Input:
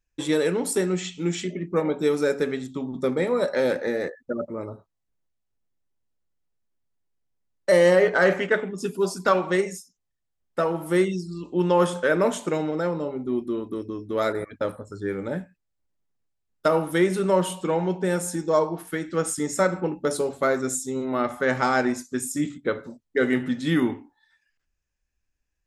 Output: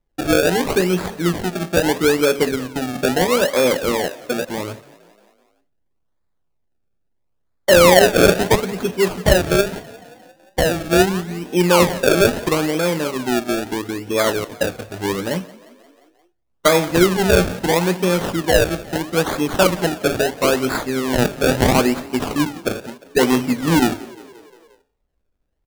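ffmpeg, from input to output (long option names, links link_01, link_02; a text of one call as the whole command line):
ffmpeg -i in.wav -filter_complex "[0:a]acrusher=samples=30:mix=1:aa=0.000001:lfo=1:lforange=30:lforate=0.76,asplit=6[link_01][link_02][link_03][link_04][link_05][link_06];[link_02]adelay=176,afreqshift=33,volume=-21dB[link_07];[link_03]adelay=352,afreqshift=66,volume=-25dB[link_08];[link_04]adelay=528,afreqshift=99,volume=-29dB[link_09];[link_05]adelay=704,afreqshift=132,volume=-33dB[link_10];[link_06]adelay=880,afreqshift=165,volume=-37.1dB[link_11];[link_01][link_07][link_08][link_09][link_10][link_11]amix=inputs=6:normalize=0,volume=6.5dB" out.wav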